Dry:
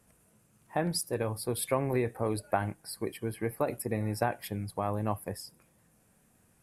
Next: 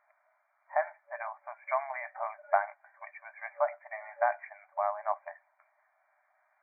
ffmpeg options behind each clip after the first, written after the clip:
-af "afftfilt=real='re*between(b*sr/4096,580,2400)':imag='im*between(b*sr/4096,580,2400)':win_size=4096:overlap=0.75,volume=3.5dB"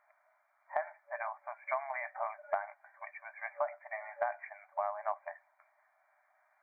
-af "acompressor=threshold=-30dB:ratio=5"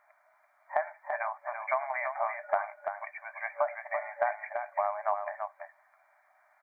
-af "aecho=1:1:337:0.473,volume=5dB"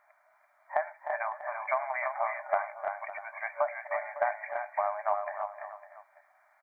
-af "aecho=1:1:306|555:0.282|0.168"

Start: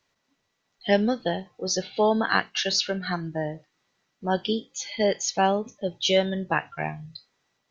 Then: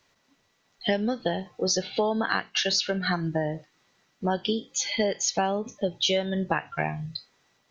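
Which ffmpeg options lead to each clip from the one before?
-af "acompressor=threshold=-29dB:ratio=6,volume=6.5dB"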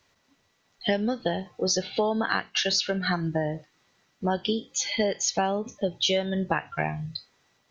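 -af "equalizer=f=75:t=o:w=0.69:g=6"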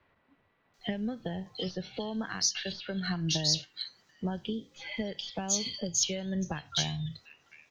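-filter_complex "[0:a]acrossover=split=190|3000[a][b][c];[b]acompressor=threshold=-39dB:ratio=4[d];[a][d][c]amix=inputs=3:normalize=0,aeval=exprs='0.224*(cos(1*acos(clip(val(0)/0.224,-1,1)))-cos(1*PI/2))+0.00501*(cos(2*acos(clip(val(0)/0.224,-1,1)))-cos(2*PI/2))+0.00355*(cos(4*acos(clip(val(0)/0.224,-1,1)))-cos(4*PI/2))+0.00282*(cos(6*acos(clip(val(0)/0.224,-1,1)))-cos(6*PI/2))':c=same,acrossover=split=2800[e][f];[f]adelay=740[g];[e][g]amix=inputs=2:normalize=0"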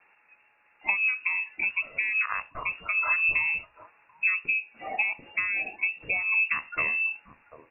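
-af "lowpass=f=2.4k:t=q:w=0.5098,lowpass=f=2.4k:t=q:w=0.6013,lowpass=f=2.4k:t=q:w=0.9,lowpass=f=2.4k:t=q:w=2.563,afreqshift=-2800,volume=7.5dB"

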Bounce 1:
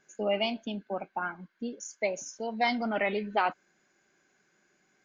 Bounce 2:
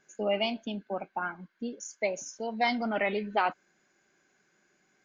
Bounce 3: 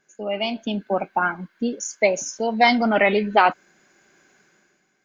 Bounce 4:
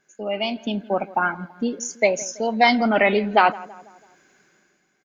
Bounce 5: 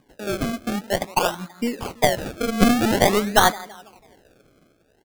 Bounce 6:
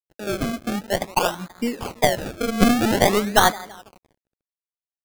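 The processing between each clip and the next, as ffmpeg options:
-af anull
-af "dynaudnorm=f=130:g=9:m=12dB"
-filter_complex "[0:a]asplit=2[a][b];[b]adelay=165,lowpass=f=1.6k:p=1,volume=-19dB,asplit=2[c][d];[d]adelay=165,lowpass=f=1.6k:p=1,volume=0.51,asplit=2[e][f];[f]adelay=165,lowpass=f=1.6k:p=1,volume=0.51,asplit=2[g][h];[h]adelay=165,lowpass=f=1.6k:p=1,volume=0.51[i];[a][c][e][g][i]amix=inputs=5:normalize=0"
-filter_complex "[0:a]acrossover=split=210|840|1400[a][b][c][d];[c]acompressor=mode=upward:threshold=-50dB:ratio=2.5[e];[a][b][e][d]amix=inputs=4:normalize=0,acrusher=samples=32:mix=1:aa=0.000001:lfo=1:lforange=32:lforate=0.49,aeval=exprs='0.596*(cos(1*acos(clip(val(0)/0.596,-1,1)))-cos(1*PI/2))+0.15*(cos(4*acos(clip(val(0)/0.596,-1,1)))-cos(4*PI/2))+0.0531*(cos(6*acos(clip(val(0)/0.596,-1,1)))-cos(6*PI/2))':c=same"
-af "acrusher=bits=6:mix=0:aa=0.5"

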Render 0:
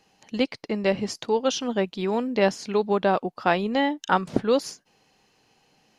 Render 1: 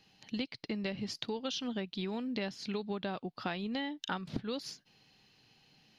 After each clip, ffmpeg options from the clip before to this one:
-af "equalizer=f=125:t=o:w=1:g=5,equalizer=f=500:t=o:w=1:g=-6,equalizer=f=1k:t=o:w=1:g=-5,equalizer=f=4k:t=o:w=1:g=8,equalizer=f=8k:t=o:w=1:g=-10,acompressor=threshold=-31dB:ratio=6,volume=-2.5dB"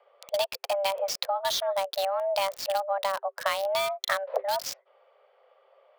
-filter_complex "[0:a]afreqshift=390,acrossover=split=1900[a][b];[b]acrusher=bits=6:mix=0:aa=0.000001[c];[a][c]amix=inputs=2:normalize=0,volume=9dB"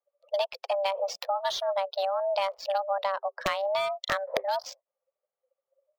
-af "aeval=exprs='(mod(4.47*val(0)+1,2)-1)/4.47':c=same,afftdn=nr=31:nf=-42,highshelf=f=5.6k:g=-11.5"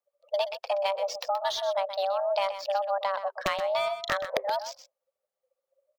-af "aecho=1:1:126:0.282"

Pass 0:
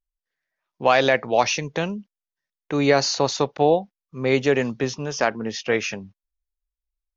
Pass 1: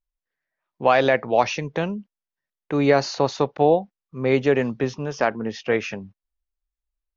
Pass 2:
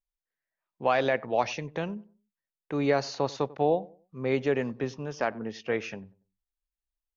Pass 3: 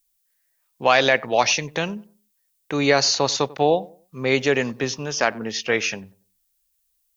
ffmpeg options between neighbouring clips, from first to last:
-af "aemphasis=mode=reproduction:type=75fm"
-filter_complex "[0:a]asplit=2[a][b];[b]adelay=95,lowpass=f=1.1k:p=1,volume=-19.5dB,asplit=2[c][d];[d]adelay=95,lowpass=f=1.1k:p=1,volume=0.31,asplit=2[e][f];[f]adelay=95,lowpass=f=1.1k:p=1,volume=0.31[g];[a][c][e][g]amix=inputs=4:normalize=0,volume=-7.5dB"
-af "crystalizer=i=7:c=0,volume=5dB"

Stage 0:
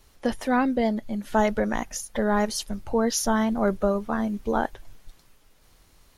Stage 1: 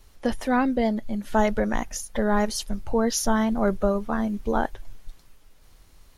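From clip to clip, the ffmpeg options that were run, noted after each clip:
-af "lowshelf=f=68:g=7.5"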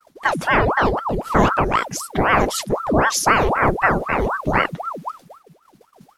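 -af "agate=range=-33dB:threshold=-44dB:ratio=3:detection=peak,aeval=exprs='val(0)*sin(2*PI*760*n/s+760*0.8/3.9*sin(2*PI*3.9*n/s))':c=same,volume=8dB"

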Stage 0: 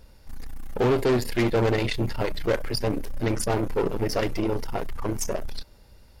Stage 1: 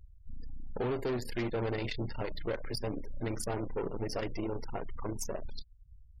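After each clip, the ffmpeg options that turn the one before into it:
-af "afftfilt=real='re*gte(hypot(re,im),0.0141)':imag='im*gte(hypot(re,im),0.0141)':win_size=1024:overlap=0.75,acompressor=threshold=-37dB:ratio=2,volume=-2dB"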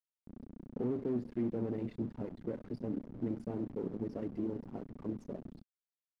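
-af "acrusher=bits=6:mix=0:aa=0.000001,bandpass=f=230:t=q:w=2.1:csg=0,volume=5dB"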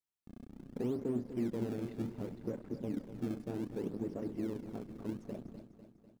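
-filter_complex "[0:a]asplit=2[a][b];[b]acrusher=samples=26:mix=1:aa=0.000001:lfo=1:lforange=41.6:lforate=0.67,volume=-12dB[c];[a][c]amix=inputs=2:normalize=0,aecho=1:1:249|498|747|996|1245|1494:0.266|0.149|0.0834|0.0467|0.0262|0.0147,volume=-2.5dB"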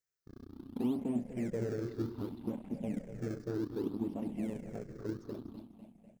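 -af "afftfilt=real='re*pow(10,12/40*sin(2*PI*(0.54*log(max(b,1)*sr/1024/100)/log(2)-(-0.62)*(pts-256)/sr)))':imag='im*pow(10,12/40*sin(2*PI*(0.54*log(max(b,1)*sr/1024/100)/log(2)-(-0.62)*(pts-256)/sr)))':win_size=1024:overlap=0.75"

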